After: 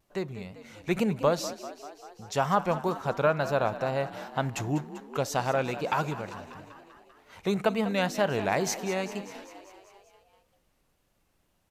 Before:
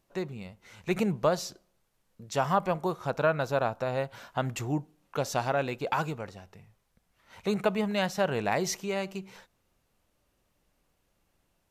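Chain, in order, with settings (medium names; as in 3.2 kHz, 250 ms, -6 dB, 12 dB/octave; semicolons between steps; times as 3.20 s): vibrato 2.1 Hz 71 cents; frequency-shifting echo 196 ms, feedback 65%, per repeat +47 Hz, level -14 dB; trim +1 dB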